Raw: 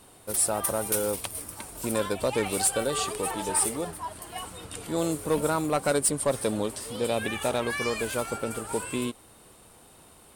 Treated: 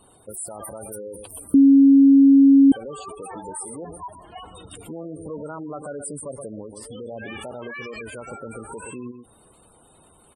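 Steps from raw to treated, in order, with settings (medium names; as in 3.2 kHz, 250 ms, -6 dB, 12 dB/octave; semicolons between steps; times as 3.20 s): echo from a far wall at 21 m, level -12 dB; 6.47–7.05 s: compression, threshold -31 dBFS, peak gain reduction 8.5 dB; peak limiter -25 dBFS, peak gain reduction 10 dB; spectral gate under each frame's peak -15 dB strong; 1.54–2.72 s: bleep 275 Hz -8.5 dBFS; 4.15–4.55 s: distance through air 160 m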